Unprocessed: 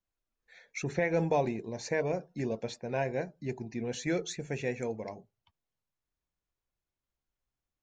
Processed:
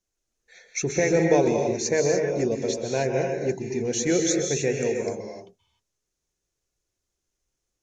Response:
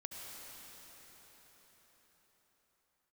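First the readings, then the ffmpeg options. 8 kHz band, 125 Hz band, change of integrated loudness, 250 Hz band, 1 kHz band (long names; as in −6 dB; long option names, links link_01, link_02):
+17.5 dB, +6.5 dB, +9.5 dB, +9.5 dB, +5.0 dB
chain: -filter_complex "[0:a]equalizer=frequency=400:width_type=o:width=0.67:gain=7,equalizer=frequency=1000:width_type=o:width=0.67:gain=-4,equalizer=frequency=6300:width_type=o:width=0.67:gain=12[link_01];[1:a]atrim=start_sample=2205,afade=type=out:start_time=0.22:duration=0.01,atrim=end_sample=10143,asetrate=24255,aresample=44100[link_02];[link_01][link_02]afir=irnorm=-1:irlink=0,volume=7dB"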